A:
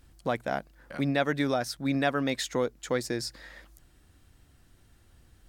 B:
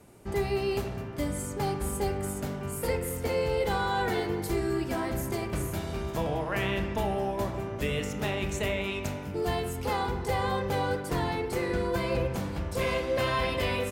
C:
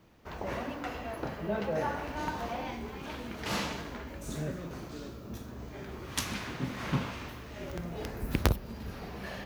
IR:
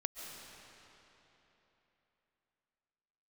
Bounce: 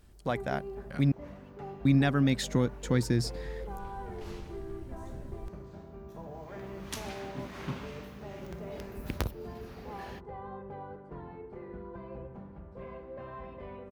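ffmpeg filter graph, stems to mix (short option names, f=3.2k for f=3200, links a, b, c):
-filter_complex "[0:a]asubboost=boost=9.5:cutoff=210,volume=-2dB,asplit=3[a][b][c];[a]atrim=end=1.12,asetpts=PTS-STARTPTS,afade=t=out:st=1.116:d=0.004:c=hsin[d];[b]atrim=start=1.12:end=1.85,asetpts=PTS-STARTPTS,volume=0[e];[c]atrim=start=1.85,asetpts=PTS-STARTPTS,afade=t=in:d=0.004:c=hsin[f];[d][e][f]concat=n=3:v=0:a=1[g];[1:a]lowpass=1.1k,aecho=1:1:5:0.38,volume=-14dB[h];[2:a]adelay=750,volume=-6.5dB,afade=t=in:st=6.05:d=0.57:silence=0.251189[i];[g][h][i]amix=inputs=3:normalize=0"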